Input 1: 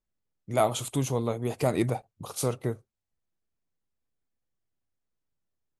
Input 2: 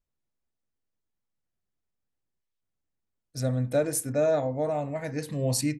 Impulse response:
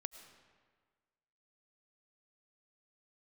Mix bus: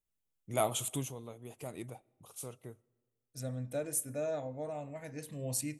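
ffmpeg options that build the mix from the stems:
-filter_complex "[0:a]volume=-8dB,afade=type=out:start_time=0.92:duration=0.23:silence=0.281838,asplit=2[link_01][link_02];[link_02]volume=-15.5dB[link_03];[1:a]volume=-13dB,asplit=2[link_04][link_05];[link_05]volume=-13dB[link_06];[2:a]atrim=start_sample=2205[link_07];[link_03][link_06]amix=inputs=2:normalize=0[link_08];[link_08][link_07]afir=irnorm=-1:irlink=0[link_09];[link_01][link_04][link_09]amix=inputs=3:normalize=0,aexciter=amount=1.2:drive=6.6:freq=2500"

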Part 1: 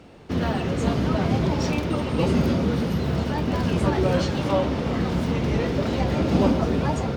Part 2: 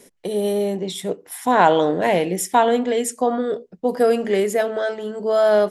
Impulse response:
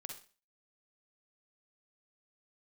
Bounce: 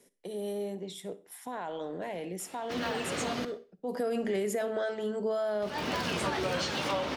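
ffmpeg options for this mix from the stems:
-filter_complex "[0:a]highpass=frequency=1400:poles=1,adelay=2400,volume=3dB,asplit=3[link_01][link_02][link_03];[link_01]atrim=end=3.45,asetpts=PTS-STARTPTS,afade=type=out:start_time=3.446:duration=0.004:curve=hsin[link_04];[link_02]atrim=start=3.45:end=5.62,asetpts=PTS-STARTPTS,volume=0[link_05];[link_03]atrim=start=5.62,asetpts=PTS-STARTPTS,afade=type=in:duration=0.004:curve=hsin[link_06];[link_04][link_05][link_06]concat=n=3:v=0:a=1,asplit=2[link_07][link_08];[link_08]volume=-6.5dB[link_09];[1:a]alimiter=limit=-15dB:level=0:latency=1:release=10,volume=-6dB,afade=type=in:start_time=3.81:duration=0.22:silence=0.316228,asplit=3[link_10][link_11][link_12];[link_11]volume=-6.5dB[link_13];[link_12]apad=whole_len=421989[link_14];[link_07][link_14]sidechaincompress=threshold=-43dB:ratio=8:attack=42:release=151[link_15];[2:a]atrim=start_sample=2205[link_16];[link_09][link_13]amix=inputs=2:normalize=0[link_17];[link_17][link_16]afir=irnorm=-1:irlink=0[link_18];[link_15][link_10][link_18]amix=inputs=3:normalize=0,acrossover=split=180[link_19][link_20];[link_20]acompressor=threshold=-29dB:ratio=4[link_21];[link_19][link_21]amix=inputs=2:normalize=0"

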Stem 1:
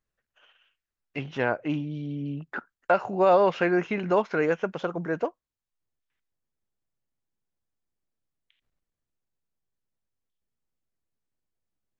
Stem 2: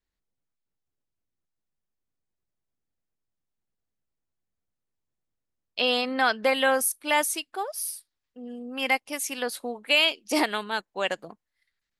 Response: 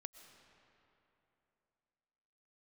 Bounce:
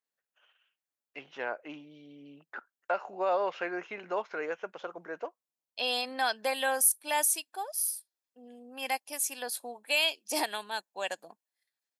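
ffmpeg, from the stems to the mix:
-filter_complex "[0:a]volume=-7.5dB[link_01];[1:a]equalizer=frequency=2000:width=0.38:gain=-11.5,aecho=1:1:1.2:0.38,adynamicequalizer=threshold=0.01:dfrequency=1500:dqfactor=0.7:tfrequency=1500:tqfactor=0.7:attack=5:release=100:ratio=0.375:range=2:mode=boostabove:tftype=highshelf,volume=0dB[link_02];[link_01][link_02]amix=inputs=2:normalize=0,highpass=480"

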